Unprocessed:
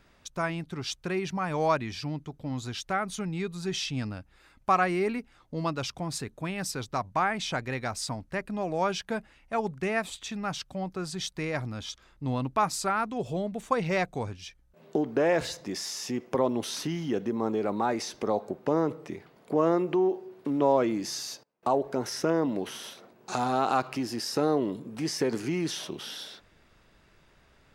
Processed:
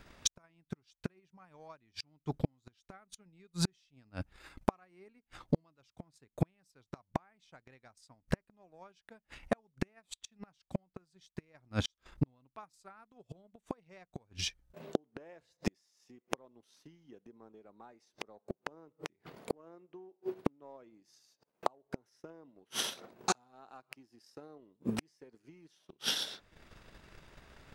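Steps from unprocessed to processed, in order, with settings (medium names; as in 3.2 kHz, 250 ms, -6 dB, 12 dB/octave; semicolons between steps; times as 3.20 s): inverted gate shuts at -28 dBFS, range -33 dB; transient shaper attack +9 dB, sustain -9 dB; trim +3.5 dB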